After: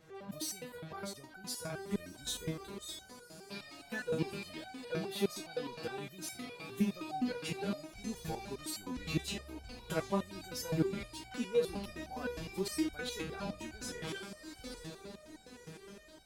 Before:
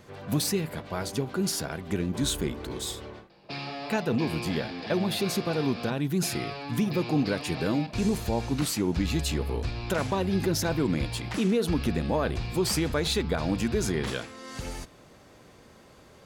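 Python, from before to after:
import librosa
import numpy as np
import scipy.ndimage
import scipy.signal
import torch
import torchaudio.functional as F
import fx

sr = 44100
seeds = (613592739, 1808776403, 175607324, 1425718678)

p1 = x + fx.echo_diffused(x, sr, ms=1739, feedback_pct=43, wet_db=-13.0, dry=0)
p2 = fx.resonator_held(p1, sr, hz=9.7, low_hz=160.0, high_hz=760.0)
y = p2 * 10.0 ** (4.0 / 20.0)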